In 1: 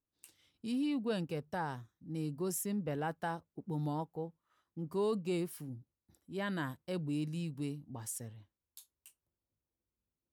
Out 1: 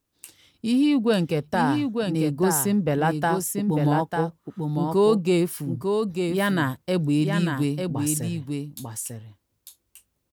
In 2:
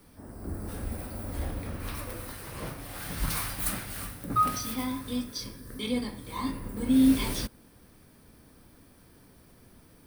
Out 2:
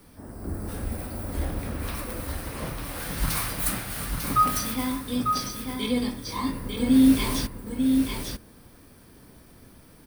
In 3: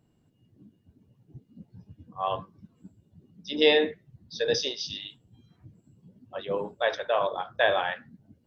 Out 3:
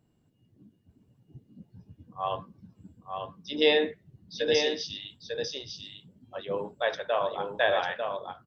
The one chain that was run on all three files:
echo 0.897 s -5 dB; normalise peaks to -9 dBFS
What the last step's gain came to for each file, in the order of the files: +14.0, +3.5, -2.0 dB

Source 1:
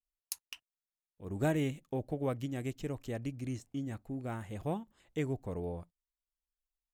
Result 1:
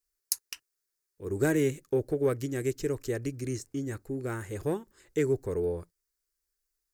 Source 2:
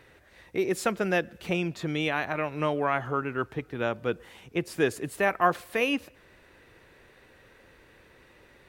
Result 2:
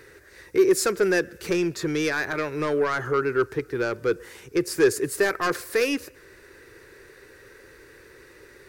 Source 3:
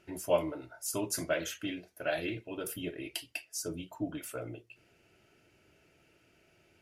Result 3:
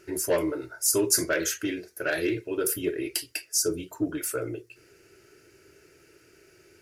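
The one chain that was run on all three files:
soft clip -22 dBFS; EQ curve 130 Hz 0 dB, 220 Hz -6 dB, 400 Hz +10 dB, 700 Hz -7 dB, 1600 Hz +6 dB, 3200 Hz -4 dB, 4800 Hz +8 dB; normalise peaks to -9 dBFS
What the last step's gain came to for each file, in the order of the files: +4.0, +3.5, +5.5 dB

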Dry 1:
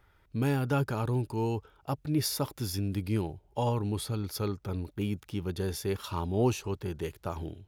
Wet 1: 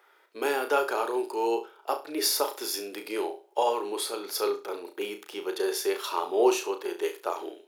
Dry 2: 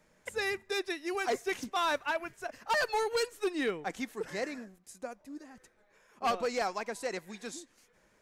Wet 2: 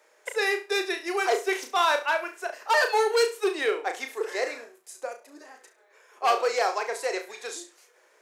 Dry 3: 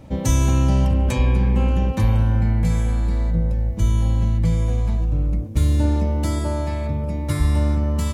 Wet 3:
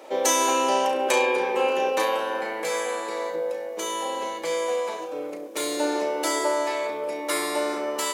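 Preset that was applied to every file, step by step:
Chebyshev high-pass 380 Hz, order 4; flutter echo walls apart 5.9 m, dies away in 0.29 s; gain +7 dB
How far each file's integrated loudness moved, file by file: +3.0, +7.5, -5.0 LU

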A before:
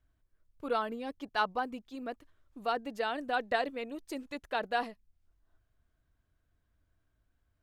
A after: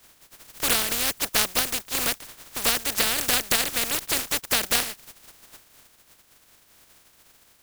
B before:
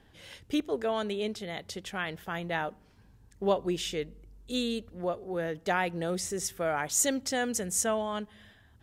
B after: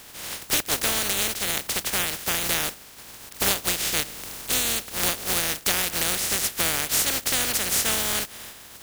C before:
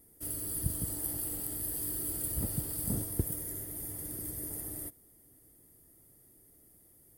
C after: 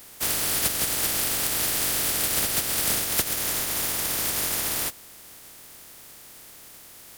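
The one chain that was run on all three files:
spectral contrast lowered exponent 0.15; dynamic EQ 1000 Hz, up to -4 dB, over -53 dBFS, Q 3.1; compressor 4:1, threshold -37 dBFS; match loudness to -23 LUFS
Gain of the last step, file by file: +17.0, +15.5, +15.0 dB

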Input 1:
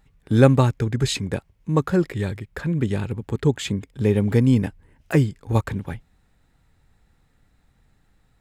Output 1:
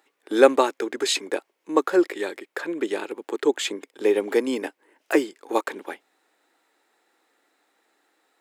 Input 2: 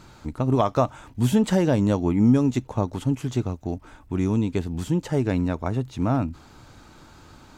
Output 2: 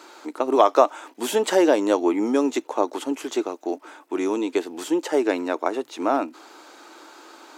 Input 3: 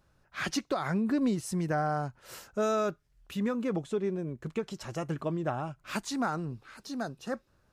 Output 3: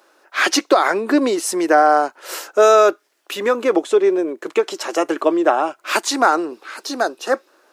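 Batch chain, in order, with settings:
elliptic high-pass 320 Hz, stop band 80 dB; normalise peaks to -1.5 dBFS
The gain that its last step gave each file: +3.5, +6.5, +18.0 dB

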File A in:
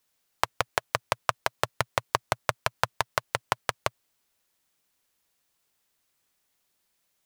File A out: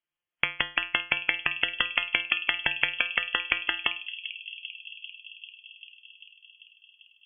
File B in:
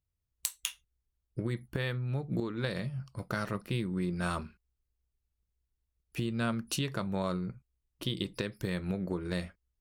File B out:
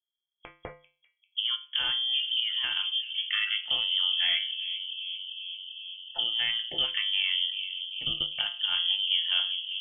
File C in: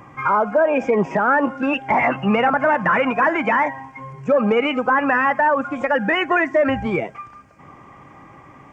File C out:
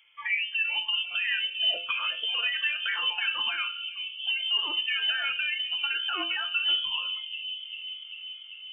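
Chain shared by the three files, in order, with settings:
spectral noise reduction 16 dB; high shelf 2600 Hz -11 dB; compressor 5:1, threshold -27 dBFS; resonator 90 Hz, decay 0.36 s, harmonics odd, mix 80%; on a send: analogue delay 0.393 s, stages 2048, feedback 75%, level -9 dB; on the sum: inverted band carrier 3300 Hz; match loudness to -27 LUFS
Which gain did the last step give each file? +17.5, +15.5, +9.0 dB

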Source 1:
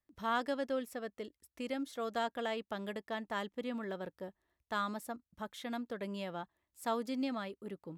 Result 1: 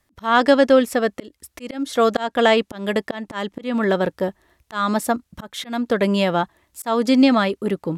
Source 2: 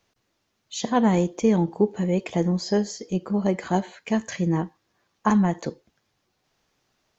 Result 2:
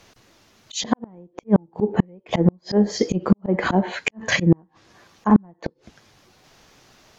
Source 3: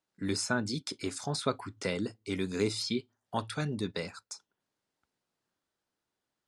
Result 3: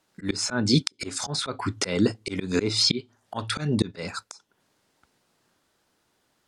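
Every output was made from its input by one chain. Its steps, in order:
treble ducked by the level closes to 1100 Hz, closed at -18.5 dBFS; auto swell 0.266 s; flipped gate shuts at -21 dBFS, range -40 dB; normalise peaks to -3 dBFS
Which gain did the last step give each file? +22.0, +18.0, +16.5 dB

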